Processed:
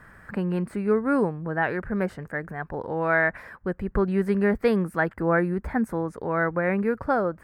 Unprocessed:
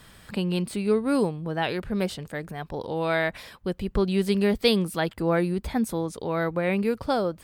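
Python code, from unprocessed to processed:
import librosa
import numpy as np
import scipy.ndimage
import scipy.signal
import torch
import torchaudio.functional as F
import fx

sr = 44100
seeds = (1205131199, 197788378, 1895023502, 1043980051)

y = fx.high_shelf_res(x, sr, hz=2400.0, db=-12.5, q=3.0)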